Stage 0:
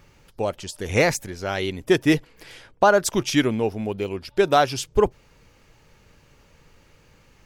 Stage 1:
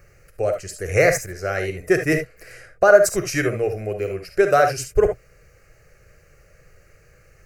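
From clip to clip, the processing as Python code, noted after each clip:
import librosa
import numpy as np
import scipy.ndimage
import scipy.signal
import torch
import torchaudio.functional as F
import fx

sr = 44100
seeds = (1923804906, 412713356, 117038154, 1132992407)

y = fx.peak_eq(x, sr, hz=980.0, db=-3.0, octaves=0.46)
y = fx.fixed_phaser(y, sr, hz=930.0, stages=6)
y = fx.rev_gated(y, sr, seeds[0], gate_ms=90, shape='rising', drr_db=6.0)
y = y * librosa.db_to_amplitude(4.0)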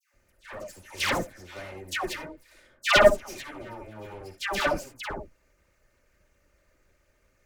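y = fx.lower_of_two(x, sr, delay_ms=3.3)
y = fx.cheby_harmonics(y, sr, harmonics=(6, 7, 8), levels_db=(-10, -14, -14), full_scale_db=-0.5)
y = fx.dispersion(y, sr, late='lows', ms=139.0, hz=1200.0)
y = y * librosa.db_to_amplitude(-4.0)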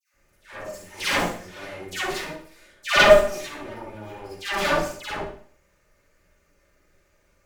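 y = fx.rev_schroeder(x, sr, rt60_s=0.5, comb_ms=38, drr_db=-8.5)
y = y * librosa.db_to_amplitude(-5.0)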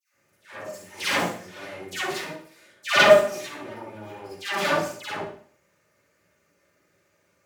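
y = scipy.signal.sosfilt(scipy.signal.butter(4, 100.0, 'highpass', fs=sr, output='sos'), x)
y = y * librosa.db_to_amplitude(-1.0)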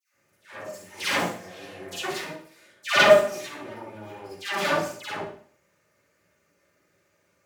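y = fx.spec_repair(x, sr, seeds[1], start_s=1.46, length_s=0.55, low_hz=420.0, high_hz=2400.0, source='before')
y = y * librosa.db_to_amplitude(-1.0)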